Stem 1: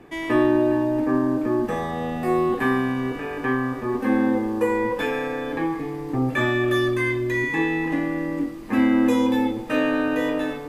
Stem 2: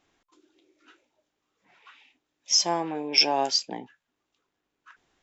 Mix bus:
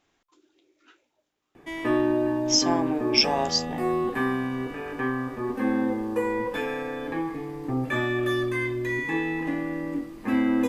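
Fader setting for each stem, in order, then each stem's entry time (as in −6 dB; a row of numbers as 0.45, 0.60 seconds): −4.5, −0.5 decibels; 1.55, 0.00 seconds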